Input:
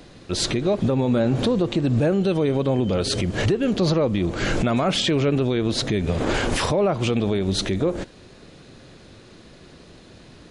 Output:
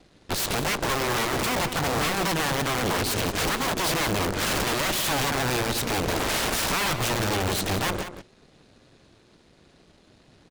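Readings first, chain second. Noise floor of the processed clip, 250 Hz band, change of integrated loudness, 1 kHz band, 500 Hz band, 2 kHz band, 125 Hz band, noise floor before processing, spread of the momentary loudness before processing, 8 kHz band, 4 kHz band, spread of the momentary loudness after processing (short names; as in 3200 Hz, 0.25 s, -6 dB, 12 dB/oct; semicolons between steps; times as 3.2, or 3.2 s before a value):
-58 dBFS, -9.0 dB, -3.0 dB, +4.0 dB, -7.0 dB, +4.5 dB, -7.5 dB, -48 dBFS, 4 LU, +5.5 dB, +0.5 dB, 2 LU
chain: wrapped overs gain 19 dB; vibrato 1.3 Hz 13 cents; overloaded stage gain 20 dB; added harmonics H 2 -8 dB, 7 -14 dB, 8 -19 dB, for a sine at -19.5 dBFS; outdoor echo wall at 31 m, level -10 dB; gain -2 dB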